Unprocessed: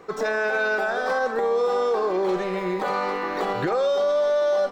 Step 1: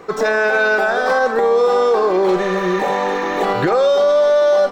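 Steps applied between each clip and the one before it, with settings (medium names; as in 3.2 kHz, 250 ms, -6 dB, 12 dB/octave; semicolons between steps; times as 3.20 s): spectral replace 2.45–3.41 s, 1–7 kHz before; trim +8 dB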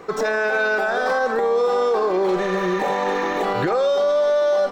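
peak limiter -11.5 dBFS, peak gain reduction 4 dB; trim -1.5 dB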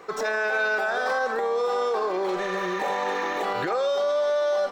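bass shelf 350 Hz -11 dB; trim -2.5 dB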